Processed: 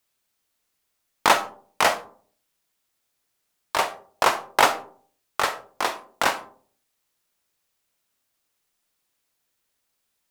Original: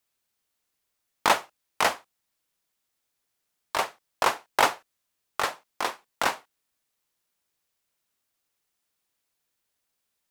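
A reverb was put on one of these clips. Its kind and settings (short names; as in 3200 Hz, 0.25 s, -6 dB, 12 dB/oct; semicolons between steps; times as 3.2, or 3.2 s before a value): digital reverb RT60 0.5 s, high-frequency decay 0.35×, pre-delay 0 ms, DRR 10 dB; gain +3.5 dB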